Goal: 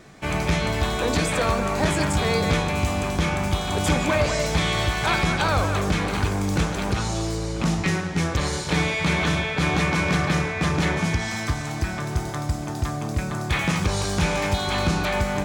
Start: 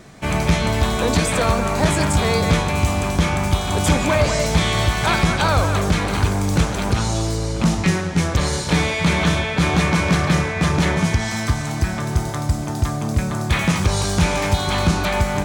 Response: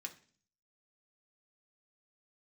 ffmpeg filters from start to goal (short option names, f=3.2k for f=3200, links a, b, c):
-filter_complex "[0:a]asplit=2[a][b];[b]highpass=150,lowpass=6.3k[c];[1:a]atrim=start_sample=2205,lowshelf=f=360:g=8[d];[c][d]afir=irnorm=-1:irlink=0,volume=-4.5dB[e];[a][e]amix=inputs=2:normalize=0,volume=-5.5dB"